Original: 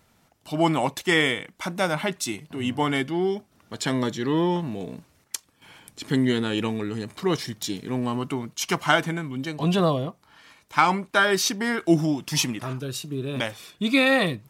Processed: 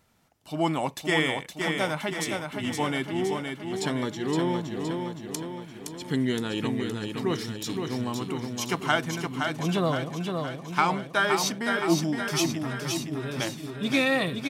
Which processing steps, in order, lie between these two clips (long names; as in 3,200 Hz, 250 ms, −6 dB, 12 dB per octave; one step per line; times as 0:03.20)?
repeating echo 517 ms, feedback 56%, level −5 dB
level −4.5 dB